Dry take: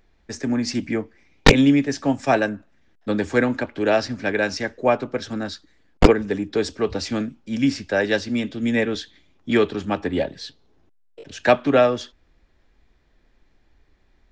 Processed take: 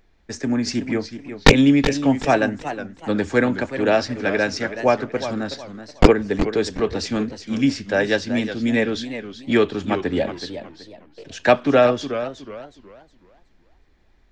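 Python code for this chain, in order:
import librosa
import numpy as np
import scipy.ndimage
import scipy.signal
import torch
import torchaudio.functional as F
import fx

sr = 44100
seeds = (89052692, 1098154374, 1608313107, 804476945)

y = fx.echo_warbled(x, sr, ms=371, feedback_pct=31, rate_hz=2.8, cents=157, wet_db=-11.0)
y = y * librosa.db_to_amplitude(1.0)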